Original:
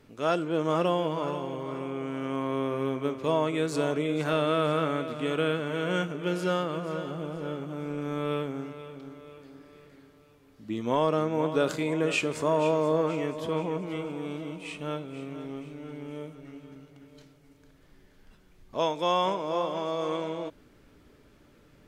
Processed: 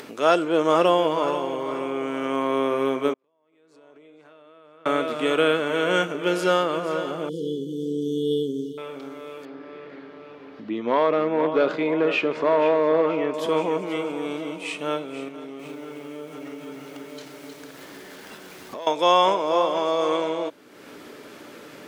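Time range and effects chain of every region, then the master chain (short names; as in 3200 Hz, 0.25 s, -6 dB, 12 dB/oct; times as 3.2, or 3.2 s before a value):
3.13–4.86 compressor 12:1, threshold -31 dBFS + flipped gate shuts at -31 dBFS, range -42 dB + LPF 3000 Hz 6 dB/oct
7.29–8.78 brick-wall FIR band-stop 520–2900 Hz + low shelf 200 Hz +7 dB
9.45–13.34 HPF 42 Hz + hard clip -20 dBFS + air absorption 290 m
15.28–18.87 compressor, threshold -43 dBFS + sample leveller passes 1 + lo-fi delay 0.313 s, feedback 35%, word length 10-bit, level -7 dB
whole clip: HPF 310 Hz 12 dB/oct; upward compressor, threshold -40 dBFS; gain +8.5 dB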